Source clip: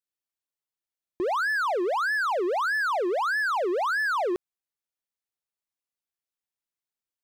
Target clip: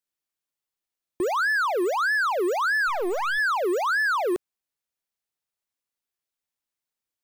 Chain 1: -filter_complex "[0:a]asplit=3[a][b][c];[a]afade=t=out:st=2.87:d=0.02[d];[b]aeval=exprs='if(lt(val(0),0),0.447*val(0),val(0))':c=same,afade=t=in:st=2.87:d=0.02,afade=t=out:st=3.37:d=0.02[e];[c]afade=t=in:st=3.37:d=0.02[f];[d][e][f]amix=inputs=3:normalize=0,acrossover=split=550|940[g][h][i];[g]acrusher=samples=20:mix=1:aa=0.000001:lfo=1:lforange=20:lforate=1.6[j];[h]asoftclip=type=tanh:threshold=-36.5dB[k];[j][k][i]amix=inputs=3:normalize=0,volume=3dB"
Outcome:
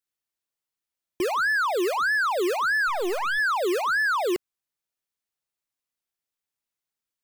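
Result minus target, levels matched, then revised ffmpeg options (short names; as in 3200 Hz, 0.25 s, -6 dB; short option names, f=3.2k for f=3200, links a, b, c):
decimation with a swept rate: distortion +12 dB
-filter_complex "[0:a]asplit=3[a][b][c];[a]afade=t=out:st=2.87:d=0.02[d];[b]aeval=exprs='if(lt(val(0),0),0.447*val(0),val(0))':c=same,afade=t=in:st=2.87:d=0.02,afade=t=out:st=3.37:d=0.02[e];[c]afade=t=in:st=3.37:d=0.02[f];[d][e][f]amix=inputs=3:normalize=0,acrossover=split=550|940[g][h][i];[g]acrusher=samples=6:mix=1:aa=0.000001:lfo=1:lforange=6:lforate=1.6[j];[h]asoftclip=type=tanh:threshold=-36.5dB[k];[j][k][i]amix=inputs=3:normalize=0,volume=3dB"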